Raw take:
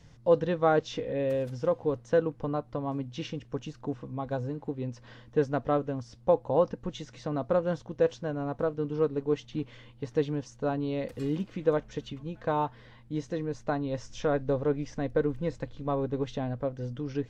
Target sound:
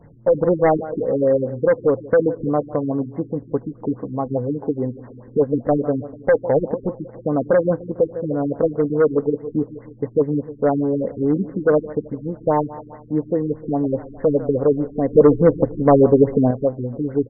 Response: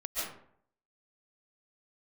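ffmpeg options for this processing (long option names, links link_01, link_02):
-filter_complex "[0:a]equalizer=frequency=440:width=0.34:gain=12.5,asplit=2[link_01][link_02];[link_02]aecho=0:1:150|300|450|600|750:0.126|0.0743|0.0438|0.0259|0.0153[link_03];[link_01][link_03]amix=inputs=2:normalize=0,volume=11.5dB,asoftclip=hard,volume=-11.5dB,asettb=1/sr,asplit=3[link_04][link_05][link_06];[link_04]atrim=end=15.134[link_07];[link_05]atrim=start=15.13:end=16.51,asetpts=PTS-STARTPTS,afade=type=in:duration=0.004:curve=qsin,afade=type=out:start_time=1.376:duration=0.004:curve=qsin,acontrast=89[link_08];[link_06]atrim=start=16.506[link_09];[link_07][link_08]acrossfade=duration=0.004:curve1=hsin:curve2=qsin[link_10];[link_10][link_09]acrossfade=duration=0.004:curve1=qsin:curve2=hsin,afftfilt=real='re*lt(b*sr/1024,390*pow(2200/390,0.5+0.5*sin(2*PI*4.8*pts/sr)))':imag='im*lt(b*sr/1024,390*pow(2200/390,0.5+0.5*sin(2*PI*4.8*pts/sr)))':win_size=1024:overlap=0.75,volume=1dB"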